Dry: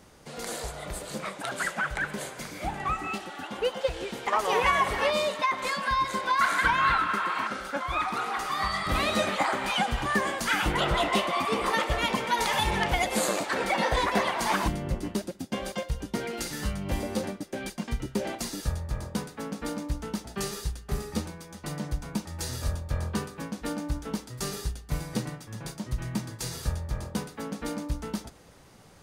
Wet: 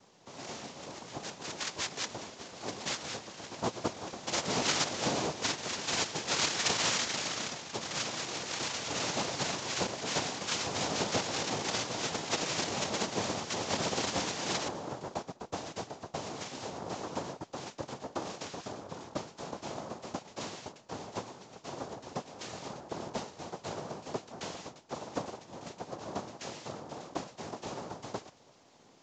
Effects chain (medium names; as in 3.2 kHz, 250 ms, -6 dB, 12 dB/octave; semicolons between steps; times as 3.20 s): noise-vocoded speech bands 2; trim -6.5 dB; µ-law 128 kbps 16 kHz